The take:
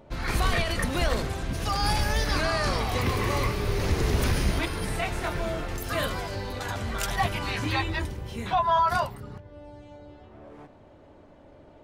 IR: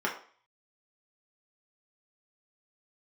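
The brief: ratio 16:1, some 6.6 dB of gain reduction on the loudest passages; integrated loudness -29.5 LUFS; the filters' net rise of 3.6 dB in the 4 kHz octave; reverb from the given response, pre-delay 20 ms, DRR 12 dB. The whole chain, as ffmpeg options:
-filter_complex "[0:a]equalizer=f=4000:t=o:g=4.5,acompressor=threshold=0.0562:ratio=16,asplit=2[s0][s1];[1:a]atrim=start_sample=2205,adelay=20[s2];[s1][s2]afir=irnorm=-1:irlink=0,volume=0.0841[s3];[s0][s3]amix=inputs=2:normalize=0,volume=1.12"

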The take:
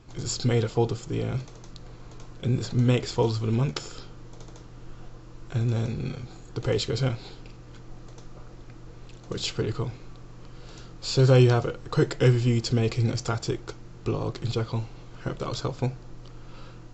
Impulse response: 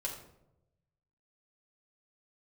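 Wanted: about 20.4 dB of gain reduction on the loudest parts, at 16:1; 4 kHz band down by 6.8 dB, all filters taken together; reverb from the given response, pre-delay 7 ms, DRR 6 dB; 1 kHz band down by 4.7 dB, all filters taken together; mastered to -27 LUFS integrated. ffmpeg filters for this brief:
-filter_complex "[0:a]equalizer=f=1000:t=o:g=-6,equalizer=f=4000:t=o:g=-8.5,acompressor=threshold=0.02:ratio=16,asplit=2[s0][s1];[1:a]atrim=start_sample=2205,adelay=7[s2];[s1][s2]afir=irnorm=-1:irlink=0,volume=0.447[s3];[s0][s3]amix=inputs=2:normalize=0,volume=4.22"

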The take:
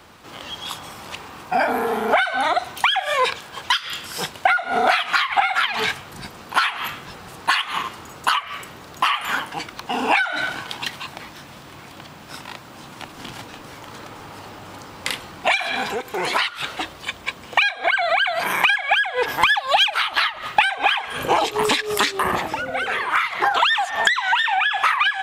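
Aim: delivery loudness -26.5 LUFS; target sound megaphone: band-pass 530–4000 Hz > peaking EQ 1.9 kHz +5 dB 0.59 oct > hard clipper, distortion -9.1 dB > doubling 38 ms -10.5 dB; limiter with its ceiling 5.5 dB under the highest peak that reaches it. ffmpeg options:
-filter_complex "[0:a]alimiter=limit=0.299:level=0:latency=1,highpass=530,lowpass=4000,equalizer=f=1900:t=o:w=0.59:g=5,asoftclip=type=hard:threshold=0.106,asplit=2[s0][s1];[s1]adelay=38,volume=0.299[s2];[s0][s2]amix=inputs=2:normalize=0,volume=0.708"

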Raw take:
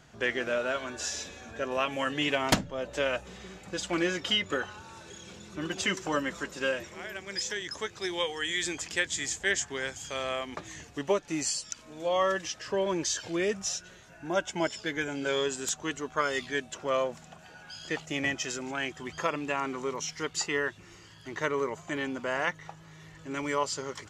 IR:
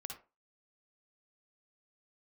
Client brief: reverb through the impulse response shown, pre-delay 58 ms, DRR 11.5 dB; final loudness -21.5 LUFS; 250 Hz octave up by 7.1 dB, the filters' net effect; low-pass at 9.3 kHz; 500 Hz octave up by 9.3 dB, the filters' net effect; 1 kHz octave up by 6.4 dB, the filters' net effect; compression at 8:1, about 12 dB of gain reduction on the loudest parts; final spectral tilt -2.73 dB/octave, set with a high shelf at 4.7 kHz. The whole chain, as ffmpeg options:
-filter_complex "[0:a]lowpass=9300,equalizer=f=250:t=o:g=5.5,equalizer=f=500:t=o:g=8.5,equalizer=f=1000:t=o:g=5,highshelf=f=4700:g=6.5,acompressor=threshold=0.0562:ratio=8,asplit=2[s0][s1];[1:a]atrim=start_sample=2205,adelay=58[s2];[s1][s2]afir=irnorm=-1:irlink=0,volume=0.376[s3];[s0][s3]amix=inputs=2:normalize=0,volume=2.82"

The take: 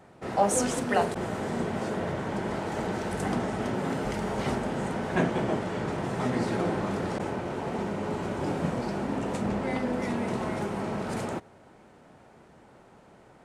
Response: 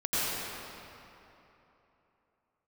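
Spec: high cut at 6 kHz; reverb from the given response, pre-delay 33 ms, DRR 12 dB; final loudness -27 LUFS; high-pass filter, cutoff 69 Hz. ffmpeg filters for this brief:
-filter_complex "[0:a]highpass=69,lowpass=6000,asplit=2[s0][s1];[1:a]atrim=start_sample=2205,adelay=33[s2];[s1][s2]afir=irnorm=-1:irlink=0,volume=0.0668[s3];[s0][s3]amix=inputs=2:normalize=0,volume=1.41"

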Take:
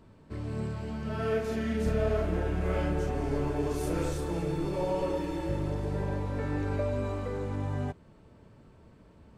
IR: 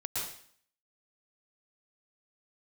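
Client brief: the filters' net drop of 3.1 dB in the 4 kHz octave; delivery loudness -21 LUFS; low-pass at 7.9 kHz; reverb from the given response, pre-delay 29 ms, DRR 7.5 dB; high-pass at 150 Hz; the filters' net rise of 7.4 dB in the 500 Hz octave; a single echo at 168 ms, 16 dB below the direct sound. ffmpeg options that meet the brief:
-filter_complex "[0:a]highpass=150,lowpass=7900,equalizer=f=500:t=o:g=9,equalizer=f=4000:t=o:g=-4,aecho=1:1:168:0.158,asplit=2[s0][s1];[1:a]atrim=start_sample=2205,adelay=29[s2];[s1][s2]afir=irnorm=-1:irlink=0,volume=0.266[s3];[s0][s3]amix=inputs=2:normalize=0,volume=2"

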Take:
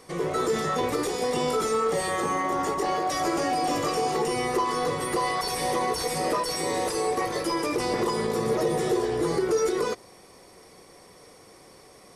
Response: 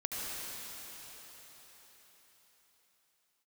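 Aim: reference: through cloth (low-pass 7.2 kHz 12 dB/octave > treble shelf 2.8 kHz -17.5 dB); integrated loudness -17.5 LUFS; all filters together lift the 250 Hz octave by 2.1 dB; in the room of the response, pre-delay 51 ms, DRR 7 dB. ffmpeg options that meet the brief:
-filter_complex "[0:a]equalizer=f=250:t=o:g=3.5,asplit=2[s0][s1];[1:a]atrim=start_sample=2205,adelay=51[s2];[s1][s2]afir=irnorm=-1:irlink=0,volume=0.266[s3];[s0][s3]amix=inputs=2:normalize=0,lowpass=7200,highshelf=f=2800:g=-17.5,volume=2.66"

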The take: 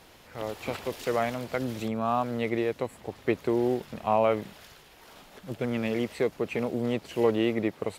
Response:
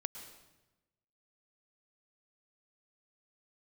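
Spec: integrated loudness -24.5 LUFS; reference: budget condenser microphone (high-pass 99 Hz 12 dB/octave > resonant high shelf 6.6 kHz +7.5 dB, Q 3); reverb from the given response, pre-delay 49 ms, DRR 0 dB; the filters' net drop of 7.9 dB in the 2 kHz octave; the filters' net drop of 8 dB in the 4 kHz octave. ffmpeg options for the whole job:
-filter_complex "[0:a]equalizer=f=2000:t=o:g=-7.5,equalizer=f=4000:t=o:g=-4.5,asplit=2[s0][s1];[1:a]atrim=start_sample=2205,adelay=49[s2];[s1][s2]afir=irnorm=-1:irlink=0,volume=1.12[s3];[s0][s3]amix=inputs=2:normalize=0,highpass=99,highshelf=f=6600:t=q:w=3:g=7.5,volume=1.33"

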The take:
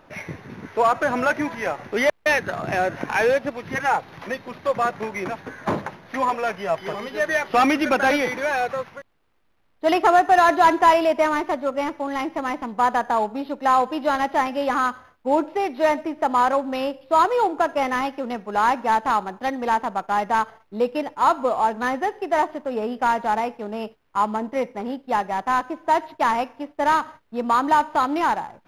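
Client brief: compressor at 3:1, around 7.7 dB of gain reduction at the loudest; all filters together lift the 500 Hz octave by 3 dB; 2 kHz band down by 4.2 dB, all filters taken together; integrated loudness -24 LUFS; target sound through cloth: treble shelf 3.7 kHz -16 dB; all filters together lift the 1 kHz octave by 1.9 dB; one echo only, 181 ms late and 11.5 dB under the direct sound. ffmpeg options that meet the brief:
-af "equalizer=f=500:t=o:g=3.5,equalizer=f=1000:t=o:g=3,equalizer=f=2000:t=o:g=-3,acompressor=threshold=0.112:ratio=3,highshelf=f=3700:g=-16,aecho=1:1:181:0.266,volume=1.06"

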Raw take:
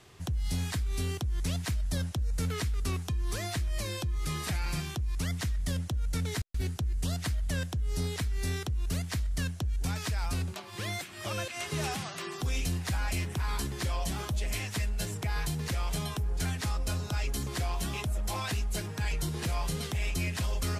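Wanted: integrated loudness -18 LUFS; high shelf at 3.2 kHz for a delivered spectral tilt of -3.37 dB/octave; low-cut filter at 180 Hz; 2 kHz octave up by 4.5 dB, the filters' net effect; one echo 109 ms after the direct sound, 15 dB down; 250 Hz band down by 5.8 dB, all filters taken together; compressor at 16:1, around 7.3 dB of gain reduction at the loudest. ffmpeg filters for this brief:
-af "highpass=180,equalizer=f=250:t=o:g=-5.5,equalizer=f=2000:t=o:g=8,highshelf=f=3200:g=-7,acompressor=threshold=0.0126:ratio=16,aecho=1:1:109:0.178,volume=15.8"

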